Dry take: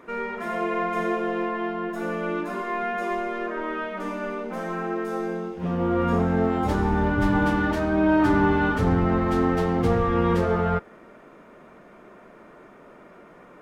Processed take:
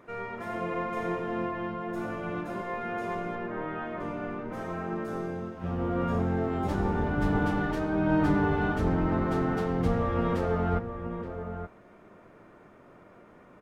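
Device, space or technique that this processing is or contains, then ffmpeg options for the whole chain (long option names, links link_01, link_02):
octave pedal: -filter_complex "[0:a]asplit=2[link_01][link_02];[link_02]asetrate=22050,aresample=44100,atempo=2,volume=-5dB[link_03];[link_01][link_03]amix=inputs=2:normalize=0,asettb=1/sr,asplit=3[link_04][link_05][link_06];[link_04]atrim=end=3.354[link_07];[link_05]atrim=start=3.35:end=4.52,asetpts=PTS-STARTPTS,afade=type=in:duration=0.004:curve=qsin,afade=type=out:start_time=1.166:duration=0.004:curve=qsin,bass=frequency=250:gain=1,treble=frequency=4000:gain=-9[link_08];[link_06]atrim=start=4.516[link_09];[link_07][link_08]acrossfade=duration=0.004:curve1=hsin:curve2=qsin[link_10];[link_10][link_09]acrossfade=duration=0.004:curve1=qsin:curve2=hsin,asplit=2[link_11][link_12];[link_12]adelay=874.6,volume=-8dB,highshelf=frequency=4000:gain=-19.7[link_13];[link_11][link_13]amix=inputs=2:normalize=0,volume=-7dB"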